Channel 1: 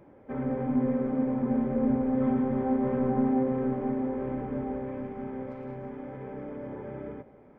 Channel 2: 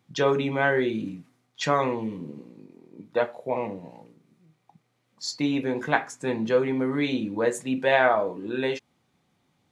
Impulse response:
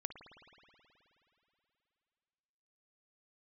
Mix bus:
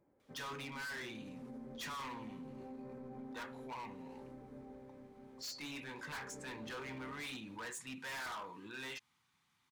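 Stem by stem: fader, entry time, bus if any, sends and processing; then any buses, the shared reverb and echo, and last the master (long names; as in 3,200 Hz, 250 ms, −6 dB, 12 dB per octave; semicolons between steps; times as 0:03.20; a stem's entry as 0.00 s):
0:05.78 −20 dB → 0:06.23 −8.5 dB, 0.00 s, no send, no processing
−12.5 dB, 0.20 s, no send, drawn EQ curve 120 Hz 0 dB, 650 Hz −9 dB, 950 Hz +10 dB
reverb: not used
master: hard clipping −37.5 dBFS, distortion −2 dB; brickwall limiter −42 dBFS, peak gain reduction 4.5 dB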